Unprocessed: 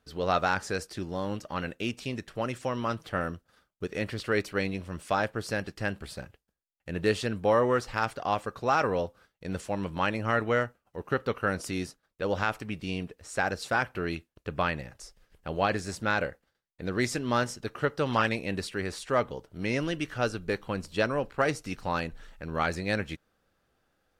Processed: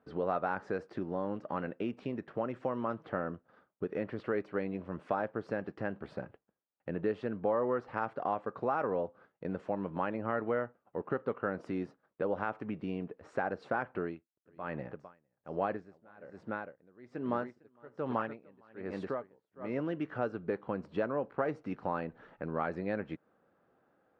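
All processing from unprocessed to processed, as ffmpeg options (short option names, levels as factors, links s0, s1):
-filter_complex "[0:a]asettb=1/sr,asplit=3[s0][s1][s2];[s0]atrim=end=14.004[s3];[s1]atrim=start=14:end=19.81,asetpts=PTS-STARTPTS,afade=t=in:d=0.004:c=qsin,afade=t=out:st=5.806:d=0.004:c=qsin,aecho=1:1:455:0.422,atrim=end_sample=256221,aeval=exprs='val(0)*pow(10,-35*(0.5-0.5*cos(2*PI*1.2*n/s))/20)':c=same[s4];[s2]atrim=start=19.806[s5];[s3][s4]acrossfade=d=0.004:c1=hsin:c2=qsin[s6];[s6][s5]acrossfade=d=0.004:c1=qsin:c2=hsin,lowpass=1200,acompressor=threshold=0.0112:ratio=2.5,highpass=180,volume=1.88"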